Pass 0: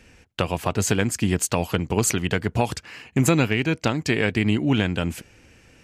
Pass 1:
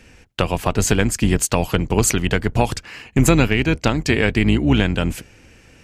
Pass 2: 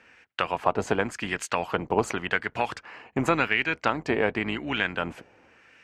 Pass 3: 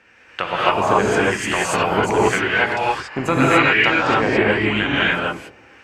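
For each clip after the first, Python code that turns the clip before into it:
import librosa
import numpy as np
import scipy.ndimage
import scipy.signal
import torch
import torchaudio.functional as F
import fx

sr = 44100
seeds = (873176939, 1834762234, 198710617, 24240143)

y1 = fx.octave_divider(x, sr, octaves=2, level_db=-5.0)
y1 = y1 * librosa.db_to_amplitude(4.0)
y2 = fx.low_shelf(y1, sr, hz=470.0, db=3.5)
y2 = fx.filter_lfo_bandpass(y2, sr, shape='sine', hz=0.9, low_hz=790.0, high_hz=1800.0, q=1.3)
y3 = fx.rev_gated(y2, sr, seeds[0], gate_ms=310, shape='rising', drr_db=-7.5)
y3 = y3 * librosa.db_to_amplitude(2.0)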